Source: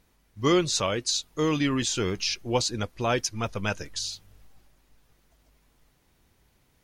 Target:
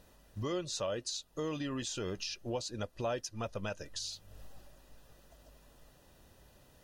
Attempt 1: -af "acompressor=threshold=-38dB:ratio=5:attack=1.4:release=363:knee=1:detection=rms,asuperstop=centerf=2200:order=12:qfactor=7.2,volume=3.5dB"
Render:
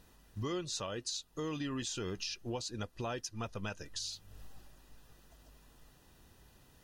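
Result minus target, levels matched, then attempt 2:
500 Hz band -3.0 dB
-af "acompressor=threshold=-38dB:ratio=5:attack=1.4:release=363:knee=1:detection=rms,asuperstop=centerf=2200:order=12:qfactor=7.2,equalizer=f=580:w=3.5:g=9,volume=3.5dB"

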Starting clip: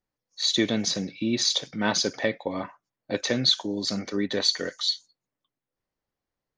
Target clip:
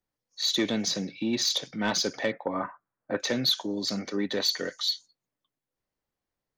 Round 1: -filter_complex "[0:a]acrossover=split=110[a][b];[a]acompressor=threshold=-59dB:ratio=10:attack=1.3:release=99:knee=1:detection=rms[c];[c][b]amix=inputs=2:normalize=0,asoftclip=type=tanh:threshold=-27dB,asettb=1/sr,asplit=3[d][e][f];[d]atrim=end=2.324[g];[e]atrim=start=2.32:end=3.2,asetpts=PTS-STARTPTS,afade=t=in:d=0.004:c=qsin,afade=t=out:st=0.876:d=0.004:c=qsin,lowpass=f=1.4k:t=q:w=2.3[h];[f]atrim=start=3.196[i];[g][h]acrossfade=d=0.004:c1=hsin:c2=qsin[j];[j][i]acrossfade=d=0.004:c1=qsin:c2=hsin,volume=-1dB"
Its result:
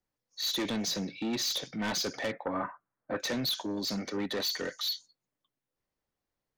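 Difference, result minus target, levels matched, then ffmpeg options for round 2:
soft clip: distortion +10 dB
-filter_complex "[0:a]acrossover=split=110[a][b];[a]acompressor=threshold=-59dB:ratio=10:attack=1.3:release=99:knee=1:detection=rms[c];[c][b]amix=inputs=2:normalize=0,asoftclip=type=tanh:threshold=-16dB,asettb=1/sr,asplit=3[d][e][f];[d]atrim=end=2.324[g];[e]atrim=start=2.32:end=3.2,asetpts=PTS-STARTPTS,afade=t=in:d=0.004:c=qsin,afade=t=out:st=0.876:d=0.004:c=qsin,lowpass=f=1.4k:t=q:w=2.3[h];[f]atrim=start=3.196[i];[g][h]acrossfade=d=0.004:c1=hsin:c2=qsin[j];[j][i]acrossfade=d=0.004:c1=qsin:c2=hsin,volume=-1dB"

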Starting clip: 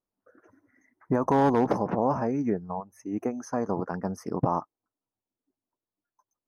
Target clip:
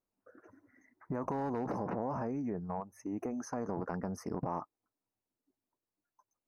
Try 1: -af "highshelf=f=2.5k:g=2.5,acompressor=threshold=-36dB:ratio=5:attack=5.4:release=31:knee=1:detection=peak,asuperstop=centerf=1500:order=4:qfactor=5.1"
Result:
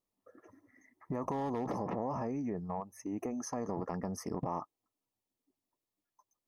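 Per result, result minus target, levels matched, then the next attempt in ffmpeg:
4000 Hz band +5.5 dB; 2000 Hz band -2.5 dB
-af "highshelf=f=2.5k:g=-4,acompressor=threshold=-36dB:ratio=5:attack=5.4:release=31:knee=1:detection=peak,asuperstop=centerf=1500:order=4:qfactor=5.1"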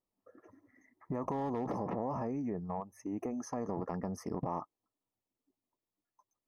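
2000 Hz band -4.5 dB
-af "highshelf=f=2.5k:g=-4,acompressor=threshold=-36dB:ratio=5:attack=5.4:release=31:knee=1:detection=peak,asuperstop=centerf=3300:order=4:qfactor=5.1"

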